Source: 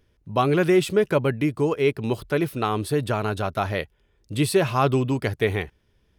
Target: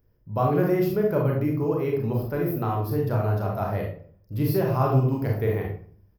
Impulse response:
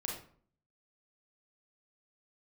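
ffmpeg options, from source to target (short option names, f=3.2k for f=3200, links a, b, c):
-filter_complex "[0:a]firequalizer=gain_entry='entry(120,0);entry(350,-6);entry(580,-2);entry(3500,-20);entry(5100,-6);entry(8700,-27);entry(13000,9)':delay=0.05:min_phase=1[a];[1:a]atrim=start_sample=2205[b];[a][b]afir=irnorm=-1:irlink=0"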